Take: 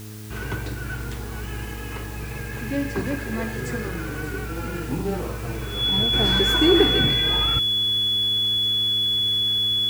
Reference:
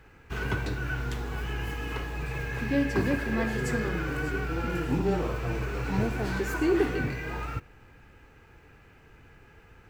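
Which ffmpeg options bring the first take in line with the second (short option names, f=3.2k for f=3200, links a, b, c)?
-af "bandreject=f=106.8:t=h:w=4,bandreject=f=213.6:t=h:w=4,bandreject=f=320.4:t=h:w=4,bandreject=f=427.2:t=h:w=4,bandreject=f=3.4k:w=30,afwtdn=0.0056,asetnsamples=n=441:p=0,asendcmd='6.13 volume volume -7dB',volume=0dB"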